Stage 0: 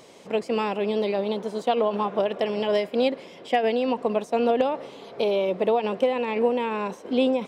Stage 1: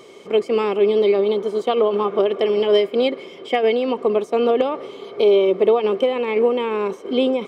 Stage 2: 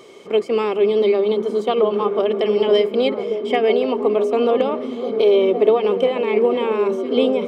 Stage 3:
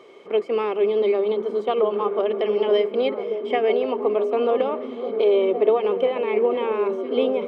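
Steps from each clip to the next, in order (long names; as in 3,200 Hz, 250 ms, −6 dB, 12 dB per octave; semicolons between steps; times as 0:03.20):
hollow resonant body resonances 390/1,200/2,200/3,100 Hz, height 13 dB, ringing for 35 ms
mains-hum notches 50/100/150/200 Hz; echo through a band-pass that steps 501 ms, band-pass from 160 Hz, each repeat 0.7 octaves, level −1 dB
bass and treble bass −9 dB, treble −14 dB; level −2.5 dB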